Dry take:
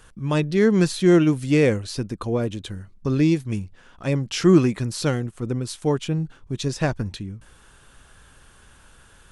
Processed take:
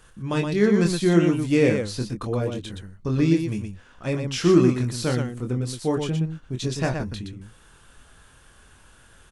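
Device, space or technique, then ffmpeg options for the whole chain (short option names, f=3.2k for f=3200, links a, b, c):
slapback doubling: -filter_complex "[0:a]asplit=3[a][b][c];[b]adelay=24,volume=-5dB[d];[c]adelay=120,volume=-5.5dB[e];[a][d][e]amix=inputs=3:normalize=0,volume=-3dB"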